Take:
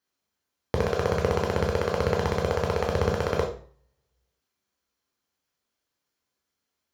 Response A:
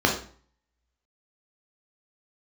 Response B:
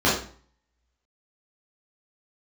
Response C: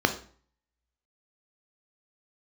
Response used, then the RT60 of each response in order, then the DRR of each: A; 0.45, 0.45, 0.45 seconds; 0.0, −8.5, 6.5 decibels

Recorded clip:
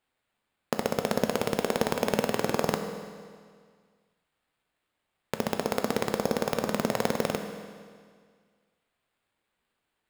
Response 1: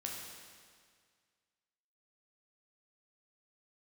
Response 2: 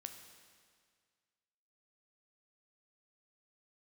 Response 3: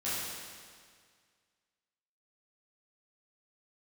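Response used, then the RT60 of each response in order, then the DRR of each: 2; 1.9, 1.9, 1.9 seconds; −2.0, 5.5, −12.0 decibels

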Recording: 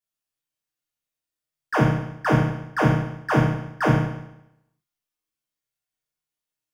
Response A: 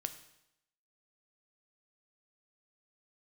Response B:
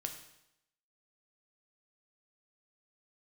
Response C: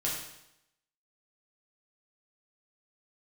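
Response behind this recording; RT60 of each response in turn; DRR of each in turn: C; 0.85, 0.80, 0.80 seconds; 8.5, 4.0, −5.5 decibels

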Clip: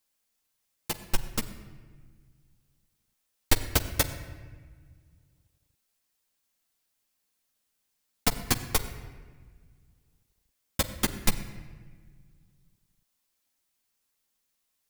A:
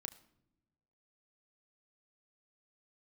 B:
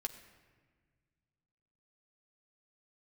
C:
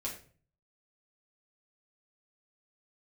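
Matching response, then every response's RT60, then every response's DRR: B; non-exponential decay, 1.5 s, 0.45 s; 5.5, 3.0, −4.5 decibels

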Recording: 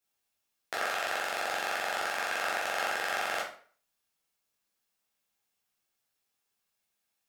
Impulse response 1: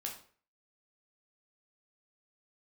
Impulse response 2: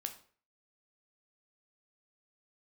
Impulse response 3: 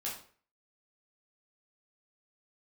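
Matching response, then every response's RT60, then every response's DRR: 3; 0.45, 0.45, 0.45 seconds; −0.5, 5.5, −6.0 decibels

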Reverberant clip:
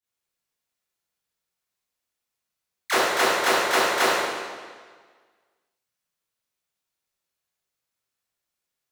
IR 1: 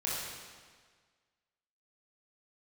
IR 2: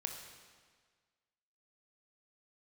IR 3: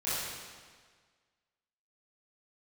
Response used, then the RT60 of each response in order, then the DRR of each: 3; 1.6, 1.6, 1.6 seconds; −7.0, 3.0, −13.5 decibels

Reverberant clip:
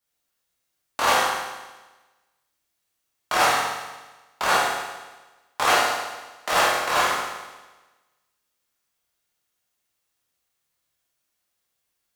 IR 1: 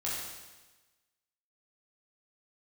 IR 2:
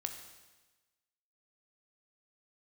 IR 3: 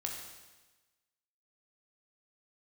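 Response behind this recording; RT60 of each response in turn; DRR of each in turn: 1; 1.2, 1.2, 1.2 seconds; −7.5, 5.0, 0.0 decibels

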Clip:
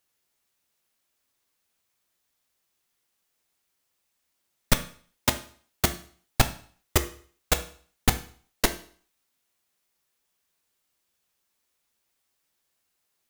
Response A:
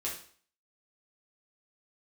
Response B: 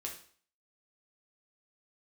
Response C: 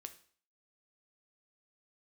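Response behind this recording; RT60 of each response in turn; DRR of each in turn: C; 0.50, 0.50, 0.50 seconds; −5.5, −1.0, 7.5 decibels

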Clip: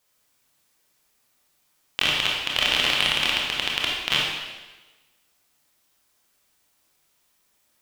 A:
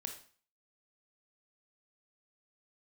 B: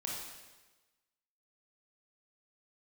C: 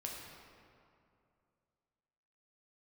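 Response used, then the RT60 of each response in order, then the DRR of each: B; 0.45, 1.2, 2.5 seconds; 4.0, −3.0, −2.0 decibels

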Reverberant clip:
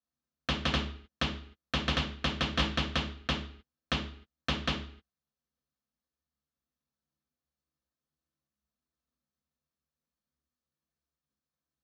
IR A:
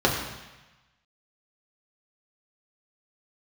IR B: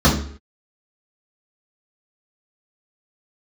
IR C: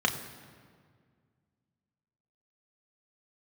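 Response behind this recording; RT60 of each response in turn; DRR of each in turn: B; 1.1, 0.55, 1.9 seconds; −3.5, −7.5, 2.0 decibels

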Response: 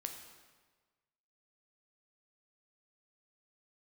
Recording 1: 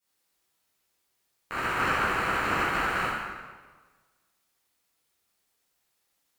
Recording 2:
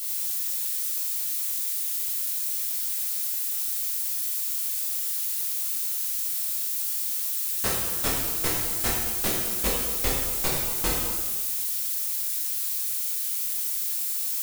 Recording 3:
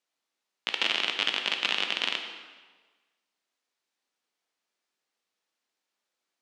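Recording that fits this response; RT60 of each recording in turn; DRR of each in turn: 3; 1.4, 1.4, 1.4 seconds; −12.5, −5.5, 4.0 decibels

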